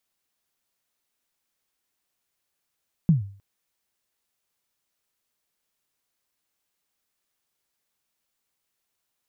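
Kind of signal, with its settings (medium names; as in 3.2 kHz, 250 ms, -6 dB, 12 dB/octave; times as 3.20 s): kick drum length 0.31 s, from 180 Hz, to 99 Hz, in 136 ms, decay 0.45 s, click off, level -11 dB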